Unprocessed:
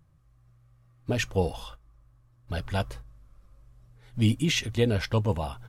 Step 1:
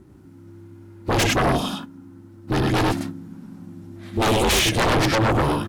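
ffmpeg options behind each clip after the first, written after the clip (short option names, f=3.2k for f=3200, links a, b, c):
-af "aeval=exprs='val(0)*sin(2*PI*220*n/s)':c=same,aecho=1:1:61.22|99.13:0.316|0.708,aeval=exprs='0.237*sin(PI/2*5.01*val(0)/0.237)':c=same,volume=-2.5dB"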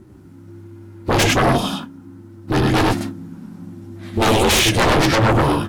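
-af "flanger=delay=8.7:depth=4.9:regen=-48:speed=1.3:shape=sinusoidal,volume=8dB"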